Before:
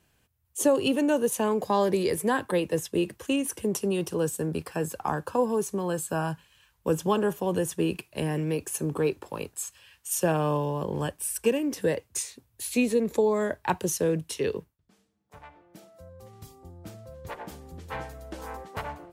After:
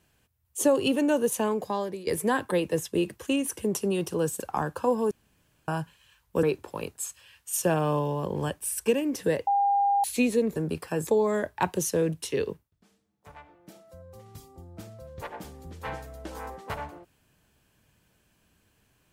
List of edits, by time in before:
1.38–2.07 s: fade out, to -18 dB
4.40–4.91 s: move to 13.14 s
5.62–6.19 s: room tone
6.94–9.01 s: delete
12.05–12.62 s: bleep 803 Hz -20 dBFS

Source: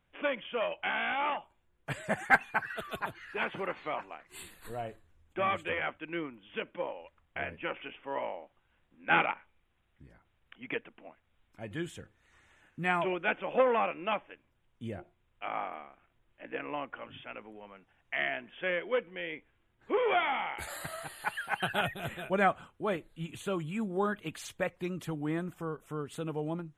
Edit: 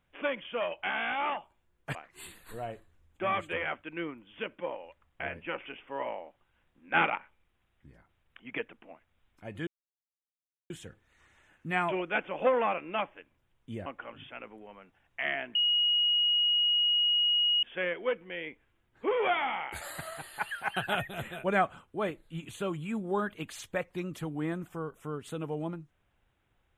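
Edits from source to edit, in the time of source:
1.95–4.11 s: delete
11.83 s: insert silence 1.03 s
14.99–16.80 s: delete
18.49 s: add tone 2.89 kHz -23 dBFS 2.08 s

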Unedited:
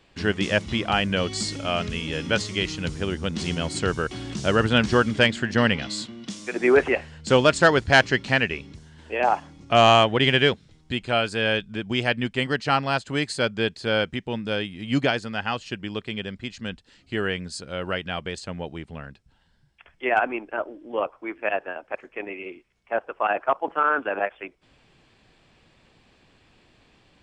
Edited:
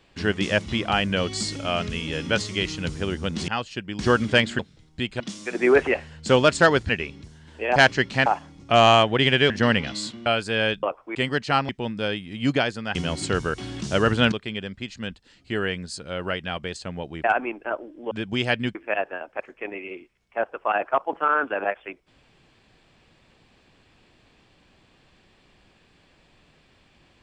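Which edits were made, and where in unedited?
3.48–4.85 s: swap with 15.43–15.94 s
5.45–6.21 s: swap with 10.51–11.12 s
7.90–8.40 s: move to 9.27 s
11.69–12.33 s: swap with 20.98–21.30 s
12.87–14.17 s: delete
18.86–20.11 s: delete

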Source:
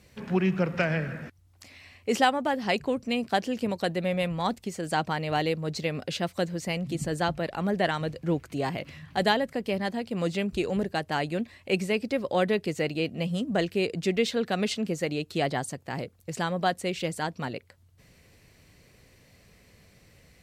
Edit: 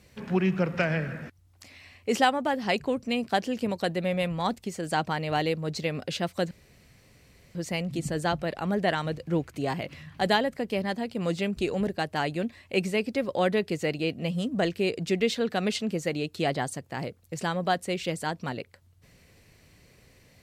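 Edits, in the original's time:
6.51 s: insert room tone 1.04 s

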